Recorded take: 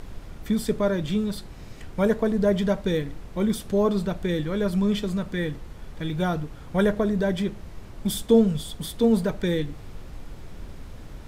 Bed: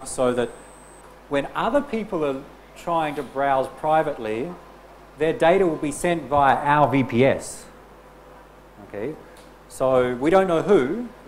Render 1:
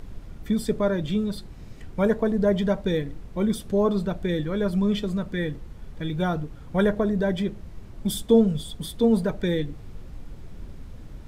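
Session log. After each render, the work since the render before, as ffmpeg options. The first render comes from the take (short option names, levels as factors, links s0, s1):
-af "afftdn=nr=6:nf=-41"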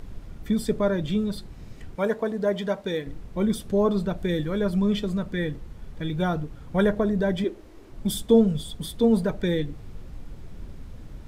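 -filter_complex "[0:a]asettb=1/sr,asplit=3[s0][s1][s2];[s0]atrim=end=1.954[s3];[s1]atrim=start=1.95:end=3.07,asetpts=PTS-STARTPTS,afade=t=in:d=0.004:c=qsin,afade=t=out:st=1.116:d=0.004:c=qsin,highpass=f=400:p=1[s4];[s2]atrim=start=3.066[s5];[s3][s4]acrossfade=d=0.004:c1=hsin:c2=qsin[s6];[s6][s5]acrossfade=d=0.004:c1=qsin:c2=hsin,asettb=1/sr,asplit=3[s7][s8][s9];[s7]atrim=end=4.184[s10];[s8]atrim=start=4.18:end=4.59,asetpts=PTS-STARTPTS,afade=t=in:d=0.004:c=qsin,afade=t=out:st=0.406:d=0.004:c=qsin,highshelf=f=7600:g=6[s11];[s9]atrim=start=4.586[s12];[s10][s11]acrossfade=d=0.004:c1=hsin:c2=qsin[s13];[s13][s12]acrossfade=d=0.004:c1=qsin:c2=hsin,asettb=1/sr,asplit=3[s14][s15][s16];[s14]atrim=end=7.444[s17];[s15]atrim=start=7.44:end=7.92,asetpts=PTS-STARTPTS,afade=t=in:d=0.004:c=qsin,afade=t=out:st=0.476:d=0.004:c=qsin,lowshelf=f=230:t=q:w=3:g=-10[s18];[s16]atrim=start=7.916[s19];[s17][s18]acrossfade=d=0.004:c1=hsin:c2=qsin[s20];[s20][s19]acrossfade=d=0.004:c1=qsin:c2=hsin"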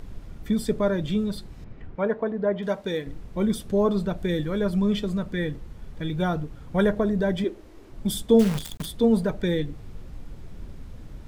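-filter_complex "[0:a]asettb=1/sr,asplit=3[s0][s1][s2];[s0]atrim=end=1.644[s3];[s1]atrim=start=1.64:end=2.63,asetpts=PTS-STARTPTS,afade=t=in:d=0.004:c=qsin,afade=t=out:st=0.986:d=0.004:c=qsin,lowpass=2100[s4];[s2]atrim=start=2.626[s5];[s3][s4]acrossfade=d=0.004:c1=hsin:c2=qsin[s6];[s6][s5]acrossfade=d=0.004:c1=qsin:c2=hsin,asettb=1/sr,asplit=3[s7][s8][s9];[s7]atrim=end=8.394[s10];[s8]atrim=start=8.39:end=8.86,asetpts=PTS-STARTPTS,afade=t=in:d=0.004:c=qsin,afade=t=out:st=0.466:d=0.004:c=qsin,acrusher=bits=6:dc=4:mix=0:aa=0.000001[s11];[s9]atrim=start=8.856[s12];[s10][s11]acrossfade=d=0.004:c1=hsin:c2=qsin[s13];[s13][s12]acrossfade=d=0.004:c1=qsin:c2=hsin"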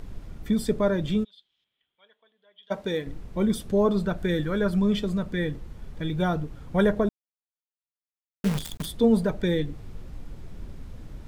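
-filter_complex "[0:a]asplit=3[s0][s1][s2];[s0]afade=t=out:st=1.23:d=0.02[s3];[s1]bandpass=f=3300:t=q:w=14,afade=t=in:st=1.23:d=0.02,afade=t=out:st=2.7:d=0.02[s4];[s2]afade=t=in:st=2.7:d=0.02[s5];[s3][s4][s5]amix=inputs=3:normalize=0,asettb=1/sr,asplit=3[s6][s7][s8];[s6]atrim=end=4.054[s9];[s7]atrim=start=4.05:end=4.79,asetpts=PTS-STARTPTS,afade=t=in:d=0.004:c=qsin,afade=t=out:st=0.736:d=0.004:c=qsin,equalizer=f=1500:w=3.2:g=6.5[s10];[s8]atrim=start=4.786[s11];[s9][s10]acrossfade=d=0.004:c1=hsin:c2=qsin[s12];[s12][s11]acrossfade=d=0.004:c1=qsin:c2=hsin,asplit=3[s13][s14][s15];[s13]atrim=end=7.09,asetpts=PTS-STARTPTS,afade=t=out:st=7.086:d=0.004:c=hsin[s16];[s14]atrim=start=7.09:end=8.44,asetpts=PTS-STARTPTS,volume=0[s17];[s15]atrim=start=8.44,asetpts=PTS-STARTPTS,afade=t=in:d=0.004:c=hsin[s18];[s16][s17][s18]concat=n=3:v=0:a=1"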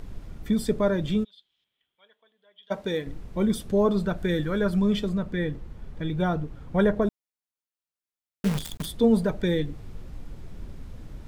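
-filter_complex "[0:a]asettb=1/sr,asplit=3[s0][s1][s2];[s0]atrim=end=5.094[s3];[s1]atrim=start=5.09:end=7.02,asetpts=PTS-STARTPTS,afade=t=in:d=0.004:c=qsin,afade=t=out:st=1.926:d=0.004:c=qsin,highshelf=f=3800:g=-7[s4];[s2]atrim=start=7.016[s5];[s3][s4]acrossfade=d=0.004:c1=hsin:c2=qsin[s6];[s6][s5]acrossfade=d=0.004:c1=qsin:c2=hsin"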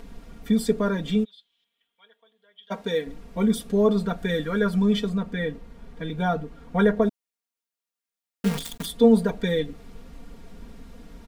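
-af "lowshelf=f=120:g=-10,aecho=1:1:4.3:0.89"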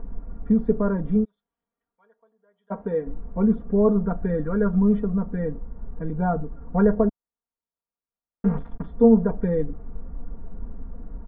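-af "lowpass=f=1300:w=0.5412,lowpass=f=1300:w=1.3066,lowshelf=f=90:g=12"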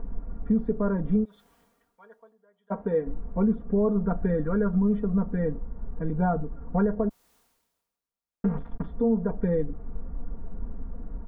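-af "alimiter=limit=0.168:level=0:latency=1:release=284,areverse,acompressor=mode=upward:threshold=0.00891:ratio=2.5,areverse"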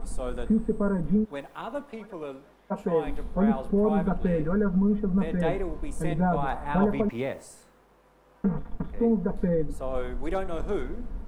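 -filter_complex "[1:a]volume=0.211[s0];[0:a][s0]amix=inputs=2:normalize=0"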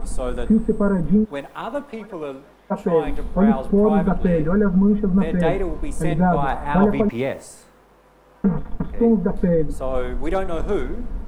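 -af "volume=2.24"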